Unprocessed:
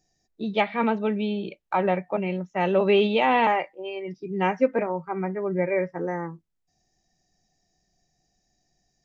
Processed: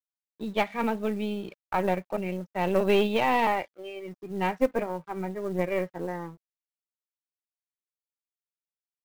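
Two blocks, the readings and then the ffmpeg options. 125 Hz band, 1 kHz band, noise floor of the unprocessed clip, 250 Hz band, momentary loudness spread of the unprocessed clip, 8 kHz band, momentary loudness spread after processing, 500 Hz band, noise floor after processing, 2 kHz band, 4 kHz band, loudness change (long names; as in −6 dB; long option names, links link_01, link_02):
−3.0 dB, −3.5 dB, −74 dBFS, −3.5 dB, 13 LU, can't be measured, 15 LU, −3.5 dB, below −85 dBFS, −3.5 dB, −3.5 dB, −3.5 dB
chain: -af "aeval=exprs='sgn(val(0))*max(abs(val(0))-0.00316,0)':channel_layout=same,aeval=exprs='0.422*(cos(1*acos(clip(val(0)/0.422,-1,1)))-cos(1*PI/2))+0.0473*(cos(2*acos(clip(val(0)/0.422,-1,1)))-cos(2*PI/2))+0.0211*(cos(6*acos(clip(val(0)/0.422,-1,1)))-cos(6*PI/2))+0.0106*(cos(7*acos(clip(val(0)/0.422,-1,1)))-cos(7*PI/2))':channel_layout=same,acrusher=bits=7:mode=log:mix=0:aa=0.000001,volume=-3dB"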